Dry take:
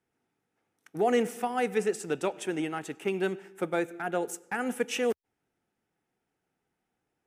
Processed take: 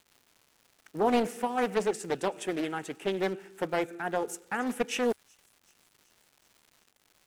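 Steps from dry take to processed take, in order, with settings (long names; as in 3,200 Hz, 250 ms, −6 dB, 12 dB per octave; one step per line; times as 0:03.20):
delay with a high-pass on its return 378 ms, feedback 64%, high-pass 5,400 Hz, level −22 dB
surface crackle 340 per second −48 dBFS
highs frequency-modulated by the lows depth 0.52 ms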